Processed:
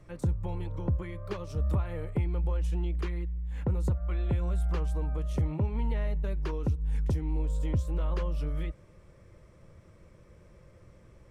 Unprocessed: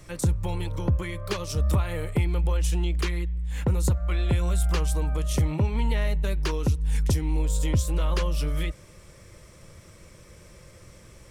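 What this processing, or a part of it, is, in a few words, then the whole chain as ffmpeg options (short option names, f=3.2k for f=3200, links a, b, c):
through cloth: -af "highshelf=f=2.7k:g=-17,volume=-5dB"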